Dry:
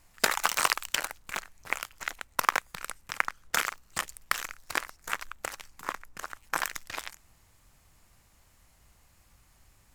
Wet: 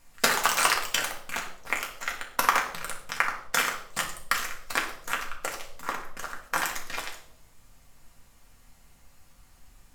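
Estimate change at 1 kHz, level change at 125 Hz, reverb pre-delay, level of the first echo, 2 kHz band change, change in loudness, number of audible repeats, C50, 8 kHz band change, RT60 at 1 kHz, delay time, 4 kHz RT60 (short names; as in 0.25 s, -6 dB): +3.5 dB, +4.5 dB, 4 ms, none, +3.0 dB, +3.5 dB, none, 8.0 dB, +3.0 dB, 0.60 s, none, 0.55 s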